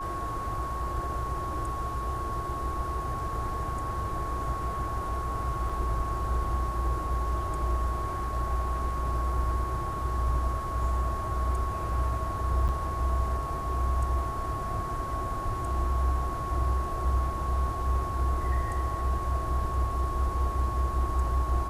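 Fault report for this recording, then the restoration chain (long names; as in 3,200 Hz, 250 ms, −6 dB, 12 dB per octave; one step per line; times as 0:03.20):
whistle 1,100 Hz −33 dBFS
0:05.69: drop-out 4.7 ms
0:12.68–0:12.69: drop-out 8.2 ms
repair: notch filter 1,100 Hz, Q 30
repair the gap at 0:05.69, 4.7 ms
repair the gap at 0:12.68, 8.2 ms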